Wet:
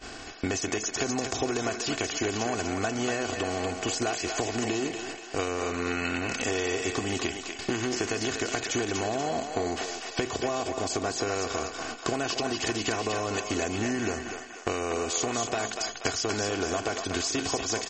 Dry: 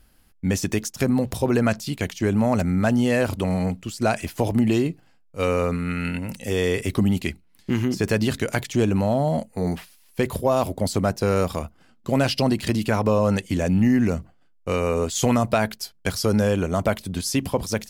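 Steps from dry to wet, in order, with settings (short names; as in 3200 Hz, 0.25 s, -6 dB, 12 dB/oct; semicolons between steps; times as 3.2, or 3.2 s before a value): per-bin compression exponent 0.6; gate -41 dBFS, range -17 dB; low shelf 220 Hz -9 dB; comb 2.7 ms, depth 67%; dynamic EQ 6600 Hz, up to +5 dB, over -46 dBFS, Q 4.5; compressor 12:1, threshold -30 dBFS, peak gain reduction 17.5 dB; short-mantissa float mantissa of 6-bit; on a send: thinning echo 0.241 s, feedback 54%, high-pass 530 Hz, level -4.5 dB; on the sum: gain +4 dB; MP3 32 kbps 44100 Hz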